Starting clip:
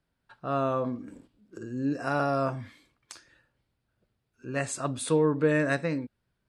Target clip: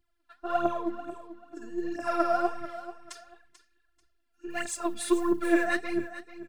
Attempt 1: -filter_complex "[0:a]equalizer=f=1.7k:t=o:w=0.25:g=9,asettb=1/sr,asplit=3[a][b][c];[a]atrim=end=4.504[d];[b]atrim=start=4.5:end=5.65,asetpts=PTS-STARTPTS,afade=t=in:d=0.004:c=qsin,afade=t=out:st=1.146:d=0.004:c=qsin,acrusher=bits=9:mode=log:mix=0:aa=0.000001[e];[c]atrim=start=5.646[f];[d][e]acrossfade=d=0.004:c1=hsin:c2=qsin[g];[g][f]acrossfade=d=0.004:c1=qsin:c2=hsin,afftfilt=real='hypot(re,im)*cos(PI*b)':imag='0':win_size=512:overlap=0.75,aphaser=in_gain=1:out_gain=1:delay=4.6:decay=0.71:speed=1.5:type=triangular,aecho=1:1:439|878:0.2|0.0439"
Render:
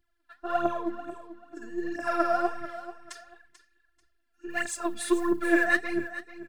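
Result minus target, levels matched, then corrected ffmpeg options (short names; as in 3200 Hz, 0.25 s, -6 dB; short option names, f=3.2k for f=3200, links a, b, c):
2000 Hz band +4.5 dB
-filter_complex "[0:a]equalizer=f=1.7k:t=o:w=0.25:g=2,asettb=1/sr,asplit=3[a][b][c];[a]atrim=end=4.504[d];[b]atrim=start=4.5:end=5.65,asetpts=PTS-STARTPTS,afade=t=in:d=0.004:c=qsin,afade=t=out:st=1.146:d=0.004:c=qsin,acrusher=bits=9:mode=log:mix=0:aa=0.000001[e];[c]atrim=start=5.646[f];[d][e]acrossfade=d=0.004:c1=hsin:c2=qsin[g];[g][f]acrossfade=d=0.004:c1=qsin:c2=hsin,afftfilt=real='hypot(re,im)*cos(PI*b)':imag='0':win_size=512:overlap=0.75,aphaser=in_gain=1:out_gain=1:delay=4.6:decay=0.71:speed=1.5:type=triangular,aecho=1:1:439|878:0.2|0.0439"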